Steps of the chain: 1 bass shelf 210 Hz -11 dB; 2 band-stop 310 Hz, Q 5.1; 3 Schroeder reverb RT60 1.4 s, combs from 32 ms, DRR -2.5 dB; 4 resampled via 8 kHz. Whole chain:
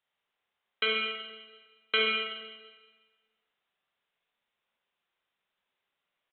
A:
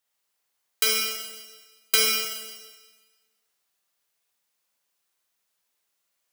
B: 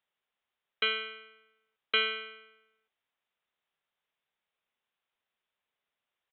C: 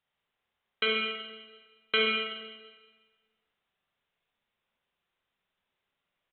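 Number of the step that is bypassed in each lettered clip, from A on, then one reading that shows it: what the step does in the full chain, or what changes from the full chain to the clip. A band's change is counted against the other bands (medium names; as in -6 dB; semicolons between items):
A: 4, 4 kHz band +4.5 dB; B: 3, 250 Hz band -6.5 dB; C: 1, 250 Hz band +5.0 dB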